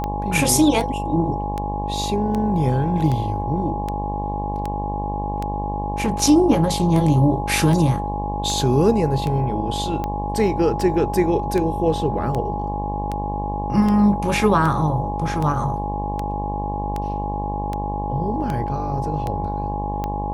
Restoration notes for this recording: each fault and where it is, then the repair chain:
buzz 50 Hz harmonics 22 -27 dBFS
tick 78 rpm -13 dBFS
tone 830 Hz -26 dBFS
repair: de-click; de-hum 50 Hz, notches 22; notch 830 Hz, Q 30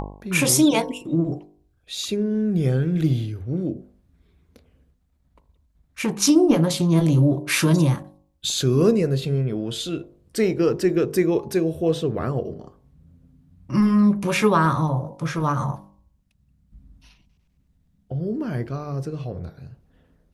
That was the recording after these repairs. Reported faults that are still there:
none

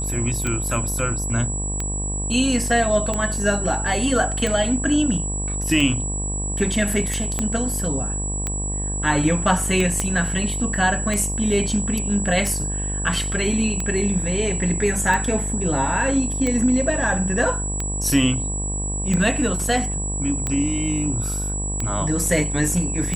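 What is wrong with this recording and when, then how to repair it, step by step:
buzz 50 Hz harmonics 22 -27 dBFS
tick 45 rpm -11 dBFS
tone 7800 Hz -27 dBFS
7.39 pop -9 dBFS
10 pop -8 dBFS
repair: de-click; de-hum 50 Hz, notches 22; notch 7800 Hz, Q 30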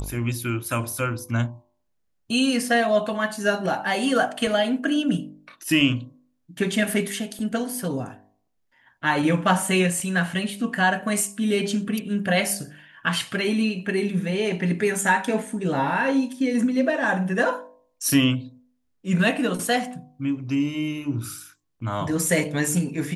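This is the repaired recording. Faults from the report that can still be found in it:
7.39 pop
10 pop

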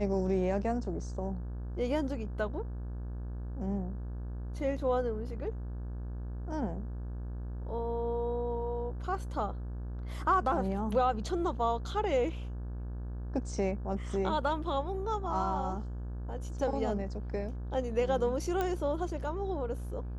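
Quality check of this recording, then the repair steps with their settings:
buzz 60 Hz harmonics 29 -38 dBFS
18.61 pop -19 dBFS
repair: de-click; de-hum 60 Hz, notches 29

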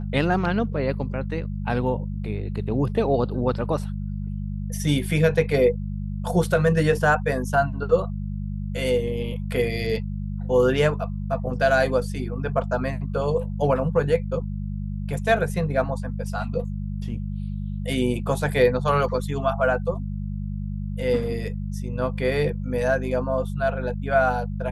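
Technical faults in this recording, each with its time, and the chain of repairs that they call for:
hum 50 Hz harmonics 4 -29 dBFS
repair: de-hum 50 Hz, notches 4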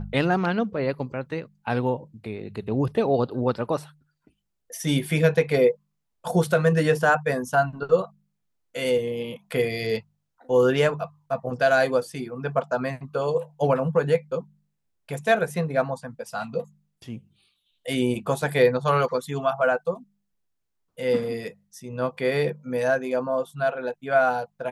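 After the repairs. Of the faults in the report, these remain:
none

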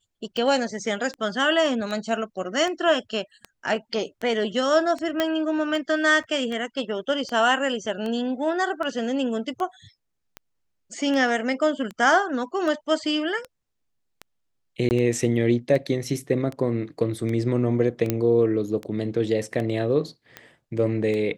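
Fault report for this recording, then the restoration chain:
tick 78 rpm -19 dBFS
5.2 pop -9 dBFS
6.23–6.24 gap 6.6 ms
14.89–14.91 gap 19 ms
18.1 pop -8 dBFS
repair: de-click; interpolate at 6.23, 6.6 ms; interpolate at 14.89, 19 ms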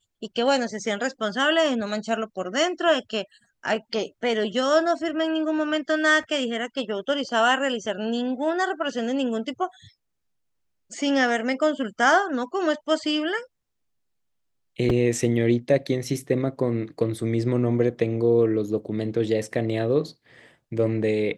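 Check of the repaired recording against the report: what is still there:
none

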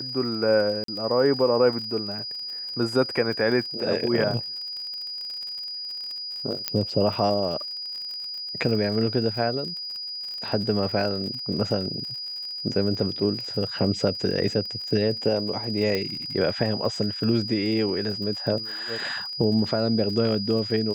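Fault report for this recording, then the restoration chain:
crackle 52/s -33 dBFS
tone 4900 Hz -31 dBFS
0.84–0.88 gap 43 ms
6.68 pop -8 dBFS
15.95 pop -13 dBFS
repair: de-click; notch 4900 Hz, Q 30; interpolate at 0.84, 43 ms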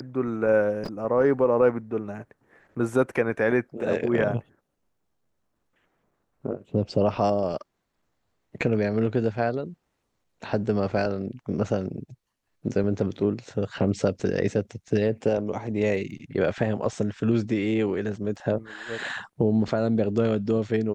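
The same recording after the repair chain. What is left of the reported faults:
15.95 pop

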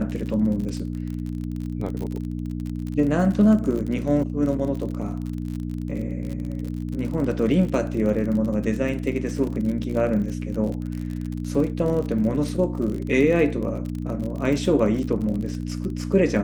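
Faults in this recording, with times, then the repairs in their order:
crackle 45/s -29 dBFS
hum 60 Hz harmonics 5 -29 dBFS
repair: de-click; de-hum 60 Hz, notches 5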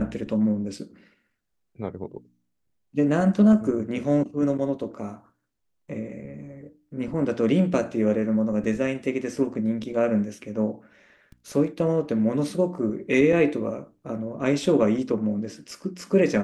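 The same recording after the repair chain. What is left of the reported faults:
none

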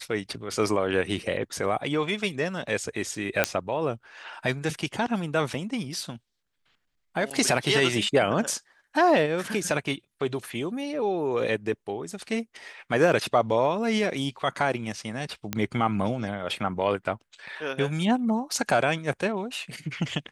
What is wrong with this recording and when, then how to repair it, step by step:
3.44 pop -5 dBFS
7.3–7.31 gap 7 ms
15.53 pop -11 dBFS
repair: de-click; interpolate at 7.3, 7 ms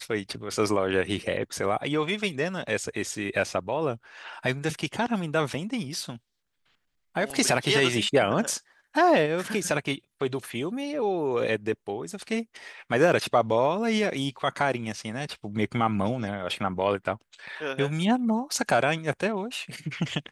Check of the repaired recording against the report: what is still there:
none

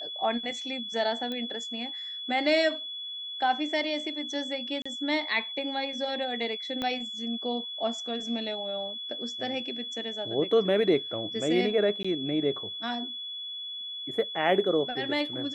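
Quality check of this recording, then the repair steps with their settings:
tone 3400 Hz -35 dBFS
1.32 pop -22 dBFS
4.82–4.86 gap 35 ms
6.82 pop -18 dBFS
12.03–12.04 gap 15 ms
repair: de-click; notch 3400 Hz, Q 30; interpolate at 4.82, 35 ms; interpolate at 12.03, 15 ms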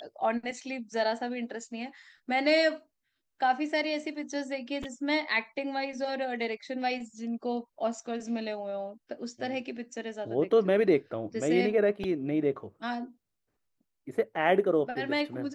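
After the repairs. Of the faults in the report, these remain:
6.82 pop

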